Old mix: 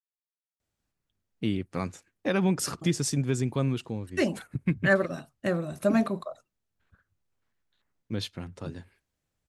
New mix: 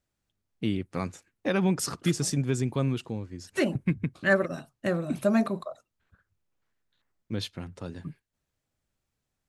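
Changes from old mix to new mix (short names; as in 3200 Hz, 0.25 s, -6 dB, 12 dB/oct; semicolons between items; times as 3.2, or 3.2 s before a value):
first voice: entry -0.80 s; second voice: entry -0.60 s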